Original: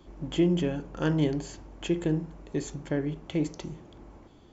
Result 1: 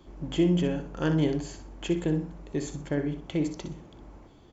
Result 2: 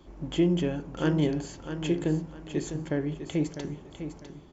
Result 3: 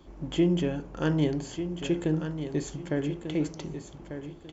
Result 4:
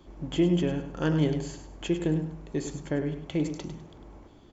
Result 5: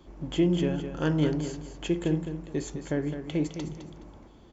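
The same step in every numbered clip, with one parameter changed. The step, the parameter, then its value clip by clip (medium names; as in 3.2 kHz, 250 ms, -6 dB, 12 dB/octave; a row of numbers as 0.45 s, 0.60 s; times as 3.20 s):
feedback delay, time: 62 ms, 652 ms, 1194 ms, 101 ms, 210 ms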